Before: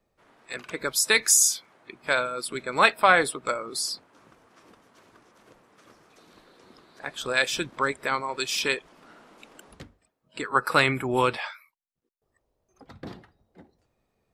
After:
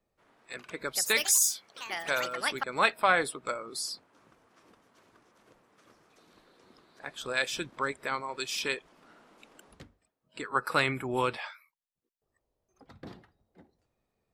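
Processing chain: 0.81–3.06 echoes that change speed 0.14 s, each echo +5 st, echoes 3, each echo -6 dB; gain -6 dB

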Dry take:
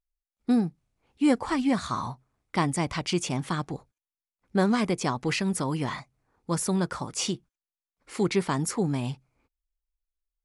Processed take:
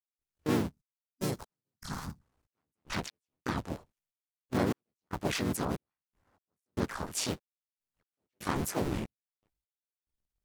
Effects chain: cycle switcher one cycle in 2, muted; step gate ".xxx..x." 73 bpm -60 dB; spectral gain 0.71–2.23, 210–3900 Hz -10 dB; in parallel at +2 dB: compressor 6:1, threshold -35 dBFS, peak gain reduction 14.5 dB; on the sum: harmoniser -4 st -5 dB, +4 st -2 dB, +7 st -13 dB; record warp 45 rpm, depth 250 cents; gain -8 dB

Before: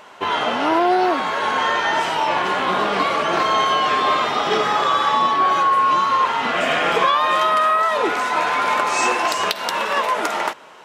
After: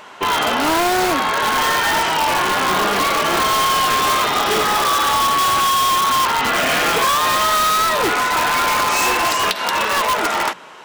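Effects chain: bell 590 Hz -3.5 dB 1 oct; notches 60/120/180/240 Hz; in parallel at -2 dB: wrapped overs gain 15.5 dB

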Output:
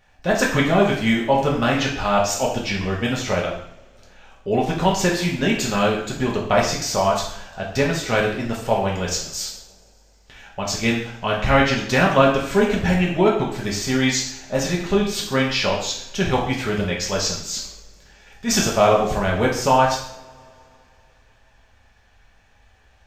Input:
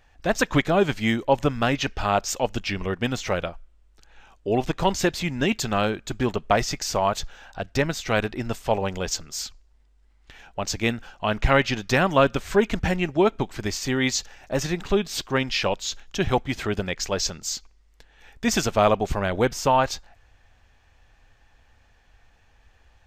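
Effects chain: 17.37–18.56 transient shaper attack -7 dB, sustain +9 dB; two-slope reverb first 0.63 s, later 3.3 s, from -27 dB, DRR -3 dB; gain -1 dB

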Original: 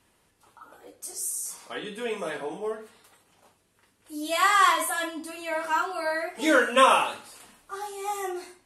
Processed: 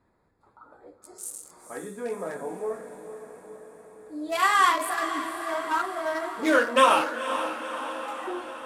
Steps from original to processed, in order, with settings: Wiener smoothing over 15 samples; 7.02–8.27 HPF 960 Hz 24 dB/oct; diffused feedback echo 0.498 s, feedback 63%, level -10 dB

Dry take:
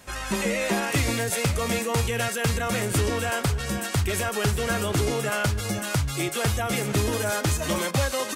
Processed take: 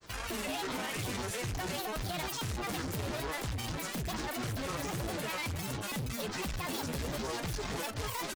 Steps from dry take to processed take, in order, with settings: tube stage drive 33 dB, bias 0.55; grains, spray 21 ms, pitch spread up and down by 12 st

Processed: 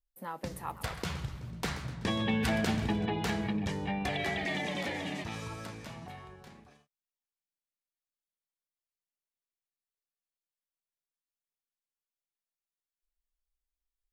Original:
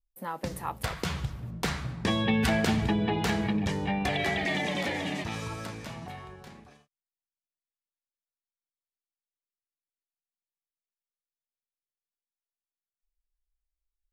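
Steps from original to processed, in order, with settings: 0.55–3.06 warbling echo 0.126 s, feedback 60%, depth 216 cents, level -14 dB; gain -4.5 dB

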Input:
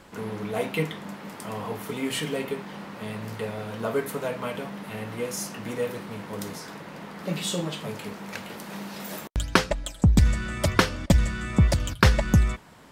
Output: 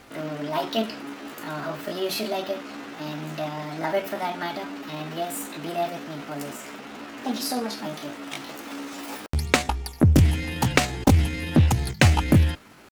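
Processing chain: pitch shift +6 st; Doppler distortion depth 0.37 ms; gain +1.5 dB

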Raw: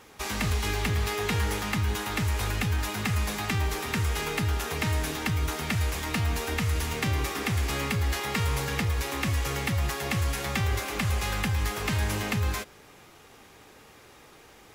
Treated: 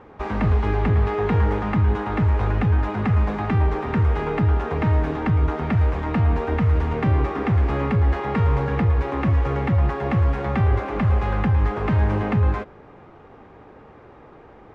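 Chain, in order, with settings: LPF 1100 Hz 12 dB/oct; gain +9 dB

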